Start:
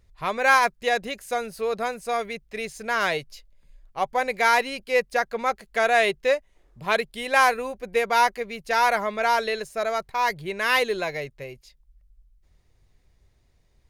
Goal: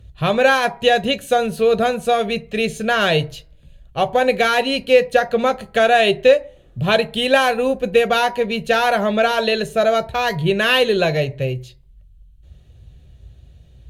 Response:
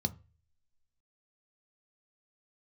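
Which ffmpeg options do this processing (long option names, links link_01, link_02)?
-filter_complex "[0:a]acompressor=threshold=-23dB:ratio=2.5[link_01];[1:a]atrim=start_sample=2205,afade=type=out:start_time=0.41:duration=0.01,atrim=end_sample=18522,asetrate=30870,aresample=44100[link_02];[link_01][link_02]afir=irnorm=-1:irlink=0,volume=4.5dB"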